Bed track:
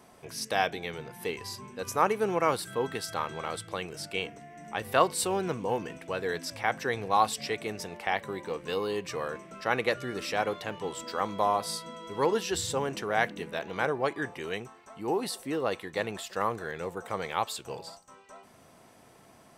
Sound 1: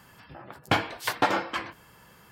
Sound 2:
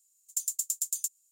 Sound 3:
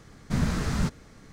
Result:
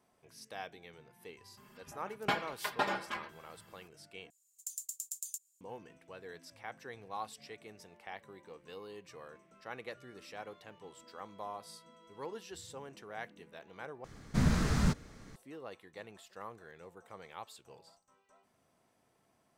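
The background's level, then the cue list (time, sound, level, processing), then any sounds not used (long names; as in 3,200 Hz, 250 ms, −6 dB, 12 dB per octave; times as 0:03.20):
bed track −17 dB
0:01.57: mix in 1 −11 dB + comb filter 4.9 ms, depth 93%
0:04.30: overwrite with 2 −4.5 dB + downward compressor, threshold −31 dBFS
0:14.04: overwrite with 3 −2.5 dB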